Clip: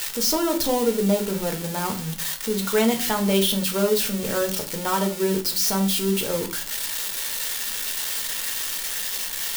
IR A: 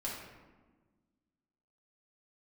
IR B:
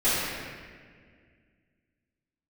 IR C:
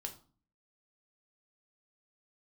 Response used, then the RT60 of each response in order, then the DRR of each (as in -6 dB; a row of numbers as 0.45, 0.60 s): C; 1.4, 1.9, 0.40 s; -6.0, -16.5, 3.5 dB